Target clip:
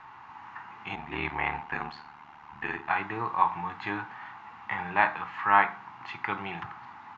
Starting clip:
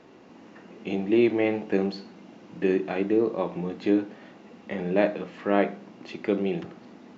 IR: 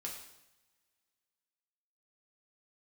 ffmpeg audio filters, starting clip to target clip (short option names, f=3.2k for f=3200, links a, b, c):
-filter_complex "[0:a]firequalizer=gain_entry='entry(120,0);entry(190,-17);entry(560,-22);entry(860,12);entry(2800,-2);entry(5600,-11)':delay=0.05:min_phase=1,asplit=3[a][b][c];[a]afade=t=out:st=0.95:d=0.02[d];[b]aeval=exprs='val(0)*sin(2*PI*37*n/s)':c=same,afade=t=in:st=0.95:d=0.02,afade=t=out:st=2.89:d=0.02[e];[c]afade=t=in:st=2.89:d=0.02[f];[d][e][f]amix=inputs=3:normalize=0,volume=3dB"